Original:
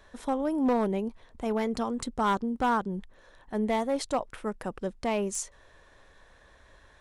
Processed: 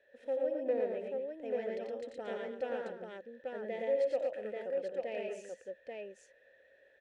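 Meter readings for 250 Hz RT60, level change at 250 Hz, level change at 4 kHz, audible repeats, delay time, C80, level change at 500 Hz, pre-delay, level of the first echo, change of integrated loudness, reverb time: no reverb, -17.0 dB, -14.0 dB, 4, 60 ms, no reverb, -2.0 dB, no reverb, -17.5 dB, -7.5 dB, no reverb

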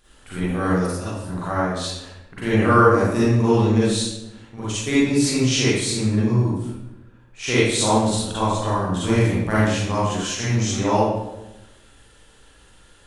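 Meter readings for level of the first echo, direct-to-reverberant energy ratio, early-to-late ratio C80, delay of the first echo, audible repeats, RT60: no echo, -10.5 dB, 1.0 dB, no echo, no echo, 1.0 s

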